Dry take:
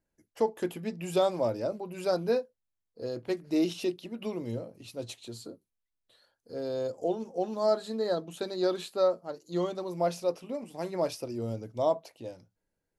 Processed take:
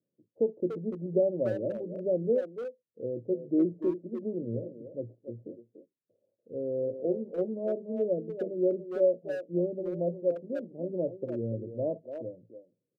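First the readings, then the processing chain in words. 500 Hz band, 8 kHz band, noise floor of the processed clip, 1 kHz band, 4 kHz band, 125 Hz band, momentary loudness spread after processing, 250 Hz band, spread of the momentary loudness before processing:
+0.5 dB, under -25 dB, under -85 dBFS, under -10 dB, under -20 dB, +1.5 dB, 13 LU, +1.5 dB, 13 LU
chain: Chebyshev band-pass 110–570 Hz, order 4; speakerphone echo 290 ms, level -8 dB; trim +1.5 dB

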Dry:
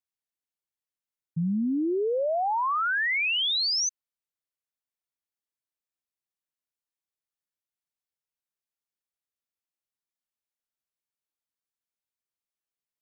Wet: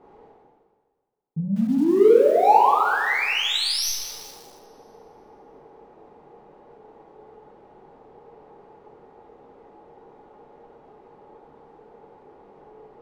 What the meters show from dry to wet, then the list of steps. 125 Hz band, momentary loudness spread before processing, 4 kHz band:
+3.0 dB, 7 LU, +1.5 dB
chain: tracing distortion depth 0.021 ms; level-controlled noise filter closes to 730 Hz; dynamic bell 510 Hz, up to -7 dB, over -41 dBFS, Q 0.88; reverse; upward compressor, threshold -36 dBFS; reverse; peak limiter -30.5 dBFS, peak gain reduction 7.5 dB; small resonant body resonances 440/790 Hz, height 16 dB, ringing for 25 ms; in parallel at -5 dB: saturation -29.5 dBFS, distortion -5 dB; on the sum: two-slope reverb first 0.82 s, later 2.2 s, DRR -5.5 dB; bit-crushed delay 195 ms, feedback 55%, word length 6-bit, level -10.5 dB; trim -1.5 dB

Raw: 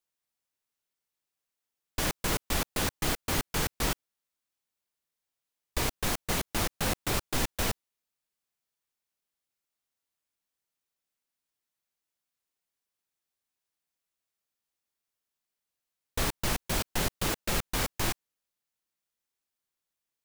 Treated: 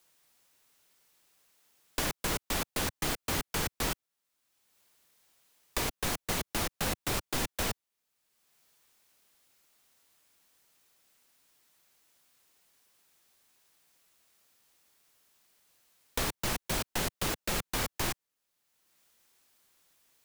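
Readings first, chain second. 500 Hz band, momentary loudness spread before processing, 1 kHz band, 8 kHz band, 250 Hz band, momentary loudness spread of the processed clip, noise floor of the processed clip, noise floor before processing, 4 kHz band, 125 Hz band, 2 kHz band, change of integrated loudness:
-2.0 dB, 3 LU, -2.0 dB, -1.5 dB, -2.5 dB, 3 LU, under -85 dBFS, under -85 dBFS, -1.5 dB, -4.0 dB, -1.5 dB, -2.0 dB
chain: bass shelf 140 Hz -3.5 dB; three bands compressed up and down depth 70%; trim -2 dB

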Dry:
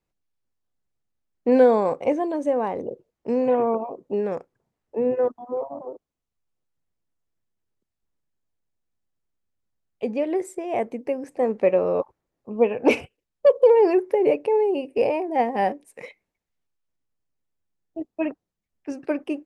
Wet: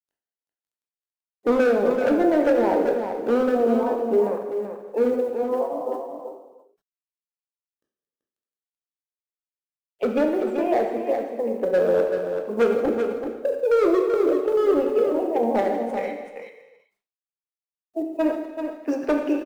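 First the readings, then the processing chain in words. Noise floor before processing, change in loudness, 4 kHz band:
-84 dBFS, 0.0 dB, no reading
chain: coarse spectral quantiser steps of 15 dB; high-pass 310 Hz 12 dB/octave; low-pass that closes with the level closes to 420 Hz, closed at -19 dBFS; treble shelf 2.3 kHz -8 dB; in parallel at -3 dB: compression 5:1, threshold -32 dBFS, peak gain reduction 14 dB; on the sum: random-step tremolo 3.5 Hz, depth 70%; hard clipper -23.5 dBFS, distortion -11 dB; companded quantiser 8-bit; on a send: delay 384 ms -7 dB; on the sum: gated-style reverb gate 420 ms falling, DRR 3 dB; decay stretcher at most 130 dB/s; trim +6.5 dB

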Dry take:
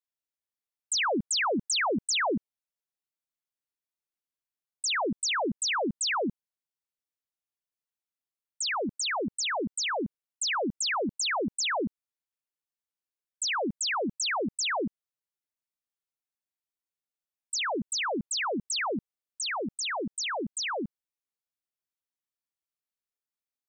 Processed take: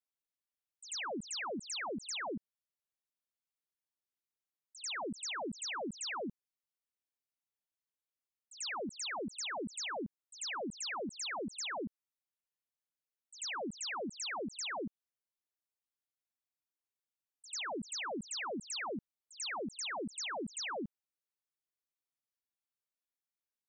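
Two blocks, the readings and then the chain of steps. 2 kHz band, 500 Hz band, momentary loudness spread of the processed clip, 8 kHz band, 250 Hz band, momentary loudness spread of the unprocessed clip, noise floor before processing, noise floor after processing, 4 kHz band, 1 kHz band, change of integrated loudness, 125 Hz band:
-10.5 dB, -10.0 dB, 5 LU, -10.5 dB, -9.5 dB, 6 LU, under -85 dBFS, under -85 dBFS, -10.5 dB, -10.5 dB, -10.5 dB, -9.5 dB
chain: pre-echo 92 ms -19 dB; peak limiter -30 dBFS, peak gain reduction 7 dB; trim -5.5 dB

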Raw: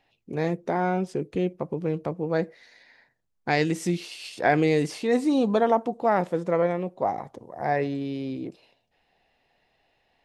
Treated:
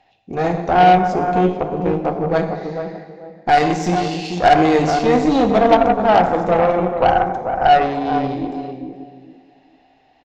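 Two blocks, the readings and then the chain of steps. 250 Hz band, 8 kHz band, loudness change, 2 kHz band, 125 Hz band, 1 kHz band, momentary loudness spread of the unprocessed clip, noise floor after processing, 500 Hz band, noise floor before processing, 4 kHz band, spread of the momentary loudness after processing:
+7.5 dB, +5.5 dB, +10.0 dB, +8.0 dB, +7.0 dB, +14.5 dB, 12 LU, -56 dBFS, +9.0 dB, -73 dBFS, +10.5 dB, 14 LU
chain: peaking EQ 750 Hz +12 dB 0.28 oct; in parallel at +3 dB: peak limiter -13 dBFS, peak gain reduction 9.5 dB; on the sum: saturation -2 dBFS, distortion -24 dB; resampled via 16 kHz; on a send: tape echo 438 ms, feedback 27%, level -5.5 dB, low-pass 1 kHz; on the sum: plate-style reverb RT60 1.6 s, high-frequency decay 0.75×, DRR 4.5 dB; Chebyshev shaper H 6 -19 dB, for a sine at 0 dBFS; trim -1.5 dB

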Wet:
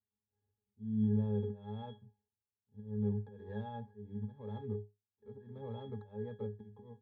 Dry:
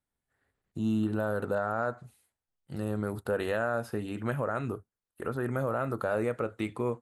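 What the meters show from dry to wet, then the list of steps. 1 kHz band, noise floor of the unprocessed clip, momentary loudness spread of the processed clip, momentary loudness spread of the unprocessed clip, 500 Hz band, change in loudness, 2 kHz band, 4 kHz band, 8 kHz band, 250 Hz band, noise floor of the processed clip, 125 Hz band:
-16.0 dB, under -85 dBFS, 20 LU, 8 LU, -13.0 dB, -7.5 dB, -26.0 dB, -12.0 dB, under -25 dB, -5.5 dB, under -85 dBFS, -3.0 dB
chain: median filter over 25 samples; treble shelf 6.4 kHz -6.5 dB; slow attack 300 ms; pitch-class resonator G#, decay 0.22 s; trim +4.5 dB

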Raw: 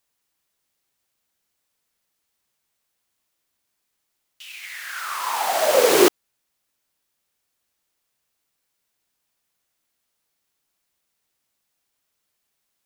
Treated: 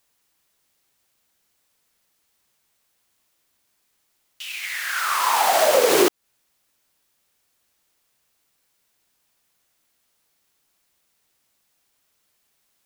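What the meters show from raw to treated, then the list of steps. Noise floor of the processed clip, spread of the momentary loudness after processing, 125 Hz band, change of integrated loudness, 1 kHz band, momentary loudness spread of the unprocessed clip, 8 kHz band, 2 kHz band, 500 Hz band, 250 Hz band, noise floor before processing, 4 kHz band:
-70 dBFS, 14 LU, no reading, -0.5 dB, +3.5 dB, 18 LU, +1.0 dB, +3.0 dB, -0.5 dB, -2.5 dB, -76 dBFS, +1.5 dB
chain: compression 4:1, threshold -21 dBFS, peak gain reduction 10 dB; trim +6.5 dB

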